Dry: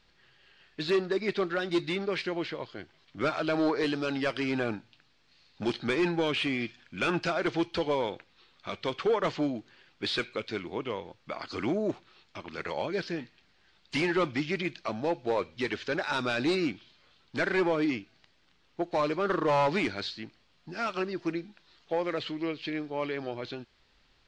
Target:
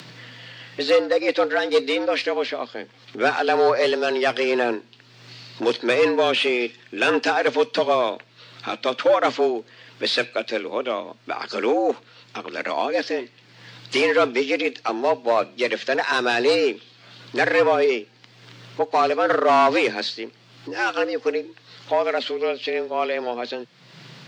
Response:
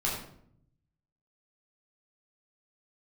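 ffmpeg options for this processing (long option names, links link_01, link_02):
-af "acompressor=mode=upward:threshold=-39dB:ratio=2.5,afreqshift=120,volume=9dB"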